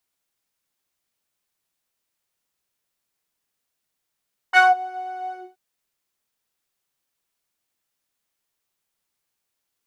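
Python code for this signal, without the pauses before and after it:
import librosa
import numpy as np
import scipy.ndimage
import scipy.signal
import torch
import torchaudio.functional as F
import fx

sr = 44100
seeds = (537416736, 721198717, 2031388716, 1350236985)

y = fx.sub_patch_pwm(sr, seeds[0], note=78, wave2='saw', interval_st=0, detune_cents=16, level2_db=-9.0, sub_db=-15.0, noise_db=-20, kind='bandpass', cutoff_hz=240.0, q=5.3, env_oct=3.0, env_decay_s=0.24, env_sustain_pct=40, attack_ms=39.0, decay_s=0.17, sustain_db=-22.5, release_s=0.23, note_s=0.8, lfo_hz=4.5, width_pct=33, width_swing_pct=14)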